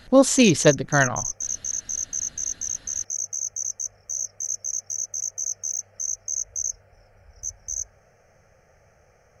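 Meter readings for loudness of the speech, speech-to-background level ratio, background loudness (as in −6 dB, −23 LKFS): −18.5 LKFS, 9.0 dB, −27.5 LKFS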